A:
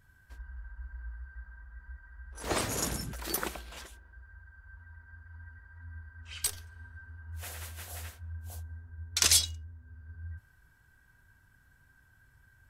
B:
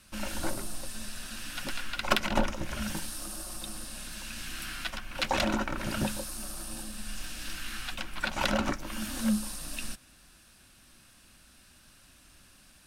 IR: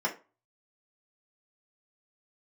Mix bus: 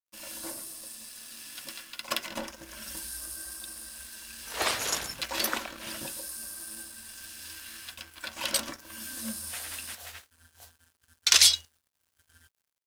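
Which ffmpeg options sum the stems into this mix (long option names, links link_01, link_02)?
-filter_complex "[0:a]acrossover=split=450 4600:gain=0.224 1 0.126[link_01][link_02][link_03];[link_01][link_02][link_03]amix=inputs=3:normalize=0,adelay=2100,volume=2.5dB[link_04];[1:a]highpass=frequency=200:poles=1,volume=-9dB,asplit=2[link_05][link_06];[link_06]volume=-10.5dB[link_07];[2:a]atrim=start_sample=2205[link_08];[link_07][link_08]afir=irnorm=-1:irlink=0[link_09];[link_04][link_05][link_09]amix=inputs=3:normalize=0,crystalizer=i=4:c=0,aeval=exprs='sgn(val(0))*max(abs(val(0))-0.00376,0)':channel_layout=same"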